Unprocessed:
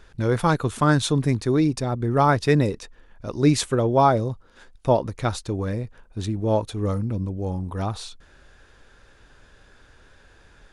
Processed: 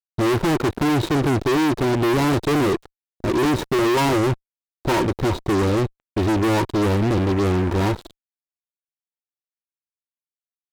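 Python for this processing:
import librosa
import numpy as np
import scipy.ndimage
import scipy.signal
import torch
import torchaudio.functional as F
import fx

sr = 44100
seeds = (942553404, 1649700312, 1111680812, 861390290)

y = scipy.ndimage.median_filter(x, 41, mode='constant')
y = fx.small_body(y, sr, hz=(350.0, 940.0, 3800.0), ring_ms=50, db=16)
y = fx.fuzz(y, sr, gain_db=33.0, gate_db=-38.0)
y = F.gain(torch.from_numpy(y), -4.0).numpy()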